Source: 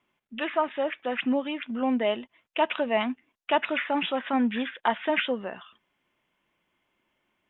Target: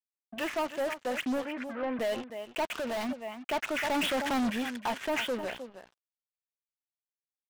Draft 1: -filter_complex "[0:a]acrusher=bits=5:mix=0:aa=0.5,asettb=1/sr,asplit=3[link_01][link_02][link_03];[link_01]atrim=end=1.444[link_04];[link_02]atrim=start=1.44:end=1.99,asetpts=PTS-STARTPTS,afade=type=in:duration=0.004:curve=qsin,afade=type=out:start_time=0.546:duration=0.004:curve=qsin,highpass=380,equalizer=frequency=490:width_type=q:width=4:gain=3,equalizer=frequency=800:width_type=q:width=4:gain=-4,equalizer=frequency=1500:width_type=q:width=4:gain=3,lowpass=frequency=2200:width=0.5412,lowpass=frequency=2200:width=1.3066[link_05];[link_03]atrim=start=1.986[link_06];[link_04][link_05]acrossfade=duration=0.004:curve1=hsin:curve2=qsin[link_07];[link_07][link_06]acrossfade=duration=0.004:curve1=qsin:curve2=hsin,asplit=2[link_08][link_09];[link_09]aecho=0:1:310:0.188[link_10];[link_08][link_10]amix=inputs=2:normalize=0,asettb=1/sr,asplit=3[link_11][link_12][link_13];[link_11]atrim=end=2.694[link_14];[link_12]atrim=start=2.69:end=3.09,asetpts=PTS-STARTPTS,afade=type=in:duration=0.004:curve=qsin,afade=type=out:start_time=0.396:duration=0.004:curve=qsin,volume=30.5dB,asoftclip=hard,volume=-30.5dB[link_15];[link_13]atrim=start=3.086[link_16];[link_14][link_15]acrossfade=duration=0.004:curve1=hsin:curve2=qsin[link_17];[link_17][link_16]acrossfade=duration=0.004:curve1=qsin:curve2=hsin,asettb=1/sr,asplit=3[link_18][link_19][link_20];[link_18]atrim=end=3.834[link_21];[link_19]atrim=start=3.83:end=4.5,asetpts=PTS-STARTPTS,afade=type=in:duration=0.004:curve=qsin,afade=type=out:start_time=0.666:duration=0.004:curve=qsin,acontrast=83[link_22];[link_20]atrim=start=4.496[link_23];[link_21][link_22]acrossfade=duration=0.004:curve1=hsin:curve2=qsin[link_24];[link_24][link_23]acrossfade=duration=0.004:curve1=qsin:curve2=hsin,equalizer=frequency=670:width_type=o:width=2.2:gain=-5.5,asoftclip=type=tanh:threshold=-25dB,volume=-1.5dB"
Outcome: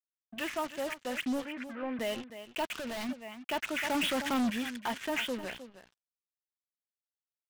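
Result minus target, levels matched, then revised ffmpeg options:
500 Hz band −2.5 dB
-filter_complex "[0:a]acrusher=bits=5:mix=0:aa=0.5,asettb=1/sr,asplit=3[link_01][link_02][link_03];[link_01]atrim=end=1.444[link_04];[link_02]atrim=start=1.44:end=1.99,asetpts=PTS-STARTPTS,afade=type=in:duration=0.004:curve=qsin,afade=type=out:start_time=0.546:duration=0.004:curve=qsin,highpass=380,equalizer=frequency=490:width_type=q:width=4:gain=3,equalizer=frequency=800:width_type=q:width=4:gain=-4,equalizer=frequency=1500:width_type=q:width=4:gain=3,lowpass=frequency=2200:width=0.5412,lowpass=frequency=2200:width=1.3066[link_05];[link_03]atrim=start=1.986[link_06];[link_04][link_05]acrossfade=duration=0.004:curve1=hsin:curve2=qsin[link_07];[link_07][link_06]acrossfade=duration=0.004:curve1=qsin:curve2=hsin,asplit=2[link_08][link_09];[link_09]aecho=0:1:310:0.188[link_10];[link_08][link_10]amix=inputs=2:normalize=0,asettb=1/sr,asplit=3[link_11][link_12][link_13];[link_11]atrim=end=2.694[link_14];[link_12]atrim=start=2.69:end=3.09,asetpts=PTS-STARTPTS,afade=type=in:duration=0.004:curve=qsin,afade=type=out:start_time=0.396:duration=0.004:curve=qsin,volume=30.5dB,asoftclip=hard,volume=-30.5dB[link_15];[link_13]atrim=start=3.086[link_16];[link_14][link_15]acrossfade=duration=0.004:curve1=hsin:curve2=qsin[link_17];[link_17][link_16]acrossfade=duration=0.004:curve1=qsin:curve2=hsin,asettb=1/sr,asplit=3[link_18][link_19][link_20];[link_18]atrim=end=3.834[link_21];[link_19]atrim=start=3.83:end=4.5,asetpts=PTS-STARTPTS,afade=type=in:duration=0.004:curve=qsin,afade=type=out:start_time=0.666:duration=0.004:curve=qsin,acontrast=83[link_22];[link_20]atrim=start=4.496[link_23];[link_21][link_22]acrossfade=duration=0.004:curve1=hsin:curve2=qsin[link_24];[link_24][link_23]acrossfade=duration=0.004:curve1=qsin:curve2=hsin,equalizer=frequency=670:width_type=o:width=2.2:gain=2.5,asoftclip=type=tanh:threshold=-25dB,volume=-1.5dB"

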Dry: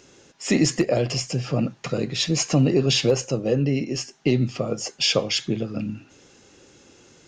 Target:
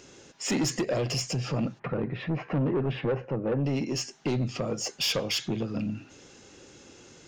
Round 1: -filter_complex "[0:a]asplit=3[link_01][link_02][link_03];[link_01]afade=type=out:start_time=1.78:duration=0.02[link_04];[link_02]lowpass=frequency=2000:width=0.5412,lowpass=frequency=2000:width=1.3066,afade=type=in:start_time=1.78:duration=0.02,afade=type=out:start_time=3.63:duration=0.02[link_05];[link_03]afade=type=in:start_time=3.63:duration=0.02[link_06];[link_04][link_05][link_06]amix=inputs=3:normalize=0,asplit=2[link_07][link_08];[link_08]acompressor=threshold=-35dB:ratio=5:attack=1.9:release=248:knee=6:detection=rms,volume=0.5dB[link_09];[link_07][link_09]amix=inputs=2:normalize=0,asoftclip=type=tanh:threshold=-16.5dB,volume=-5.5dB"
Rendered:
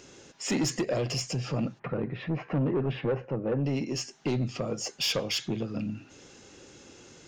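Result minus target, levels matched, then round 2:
downward compressor: peak gain reduction +8.5 dB
-filter_complex "[0:a]asplit=3[link_01][link_02][link_03];[link_01]afade=type=out:start_time=1.78:duration=0.02[link_04];[link_02]lowpass=frequency=2000:width=0.5412,lowpass=frequency=2000:width=1.3066,afade=type=in:start_time=1.78:duration=0.02,afade=type=out:start_time=3.63:duration=0.02[link_05];[link_03]afade=type=in:start_time=3.63:duration=0.02[link_06];[link_04][link_05][link_06]amix=inputs=3:normalize=0,asplit=2[link_07][link_08];[link_08]acompressor=threshold=-24.5dB:ratio=5:attack=1.9:release=248:knee=6:detection=rms,volume=0.5dB[link_09];[link_07][link_09]amix=inputs=2:normalize=0,asoftclip=type=tanh:threshold=-16.5dB,volume=-5.5dB"

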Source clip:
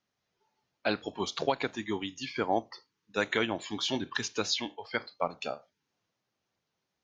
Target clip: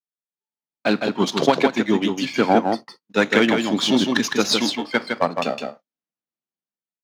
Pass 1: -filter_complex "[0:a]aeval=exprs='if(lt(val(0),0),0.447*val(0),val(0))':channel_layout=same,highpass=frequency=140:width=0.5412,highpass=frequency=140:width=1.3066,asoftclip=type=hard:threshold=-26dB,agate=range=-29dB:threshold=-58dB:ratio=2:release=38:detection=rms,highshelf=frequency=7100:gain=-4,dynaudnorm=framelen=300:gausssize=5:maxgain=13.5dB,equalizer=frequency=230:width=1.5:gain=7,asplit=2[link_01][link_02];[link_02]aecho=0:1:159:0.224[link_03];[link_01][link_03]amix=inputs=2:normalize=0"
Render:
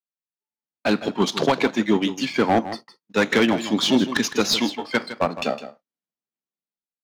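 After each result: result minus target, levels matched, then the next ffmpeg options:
hard clipping: distortion +20 dB; echo-to-direct −8 dB
-filter_complex "[0:a]aeval=exprs='if(lt(val(0),0),0.447*val(0),val(0))':channel_layout=same,highpass=frequency=140:width=0.5412,highpass=frequency=140:width=1.3066,asoftclip=type=hard:threshold=-18dB,agate=range=-29dB:threshold=-58dB:ratio=2:release=38:detection=rms,highshelf=frequency=7100:gain=-4,dynaudnorm=framelen=300:gausssize=5:maxgain=13.5dB,equalizer=frequency=230:width=1.5:gain=7,asplit=2[link_01][link_02];[link_02]aecho=0:1:159:0.224[link_03];[link_01][link_03]amix=inputs=2:normalize=0"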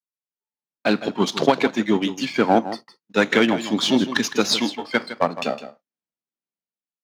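echo-to-direct −8 dB
-filter_complex "[0:a]aeval=exprs='if(lt(val(0),0),0.447*val(0),val(0))':channel_layout=same,highpass=frequency=140:width=0.5412,highpass=frequency=140:width=1.3066,asoftclip=type=hard:threshold=-18dB,agate=range=-29dB:threshold=-58dB:ratio=2:release=38:detection=rms,highshelf=frequency=7100:gain=-4,dynaudnorm=framelen=300:gausssize=5:maxgain=13.5dB,equalizer=frequency=230:width=1.5:gain=7,asplit=2[link_01][link_02];[link_02]aecho=0:1:159:0.562[link_03];[link_01][link_03]amix=inputs=2:normalize=0"

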